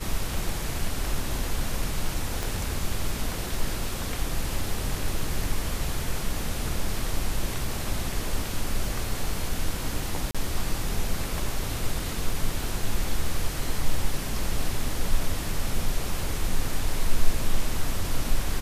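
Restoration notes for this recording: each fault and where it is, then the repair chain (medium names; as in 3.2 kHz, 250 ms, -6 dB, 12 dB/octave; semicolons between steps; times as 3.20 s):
2.43 s: pop
10.31–10.35 s: dropout 36 ms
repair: de-click; interpolate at 10.31 s, 36 ms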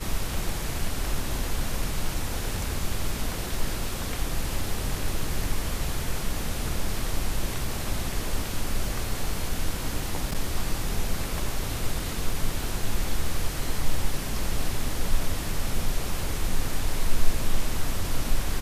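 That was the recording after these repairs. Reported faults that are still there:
2.43 s: pop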